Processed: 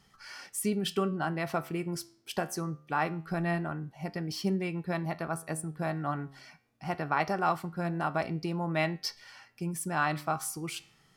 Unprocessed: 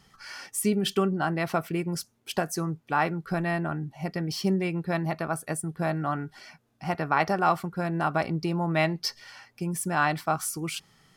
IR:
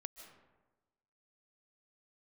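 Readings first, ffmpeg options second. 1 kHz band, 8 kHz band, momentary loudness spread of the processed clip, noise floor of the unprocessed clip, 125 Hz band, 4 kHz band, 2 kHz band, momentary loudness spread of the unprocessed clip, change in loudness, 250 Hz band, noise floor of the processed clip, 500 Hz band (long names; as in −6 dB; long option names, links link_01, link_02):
−4.5 dB, −4.5 dB, 9 LU, −67 dBFS, −4.5 dB, −4.5 dB, −4.5 dB, 9 LU, −4.5 dB, −4.5 dB, −65 dBFS, −4.5 dB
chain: -af "flanger=delay=9.5:depth=5.5:regen=84:speed=0.23:shape=triangular"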